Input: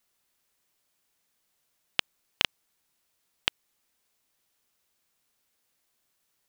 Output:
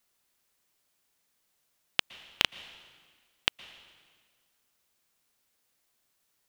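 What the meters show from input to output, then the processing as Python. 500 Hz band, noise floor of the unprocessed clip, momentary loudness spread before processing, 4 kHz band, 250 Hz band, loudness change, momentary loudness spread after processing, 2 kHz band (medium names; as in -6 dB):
0.0 dB, -76 dBFS, 3 LU, 0.0 dB, 0.0 dB, 0.0 dB, 21 LU, 0.0 dB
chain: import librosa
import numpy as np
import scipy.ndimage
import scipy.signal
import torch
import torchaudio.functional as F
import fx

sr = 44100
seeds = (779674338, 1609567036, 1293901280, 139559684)

y = fx.rev_plate(x, sr, seeds[0], rt60_s=1.7, hf_ratio=0.9, predelay_ms=105, drr_db=17.0)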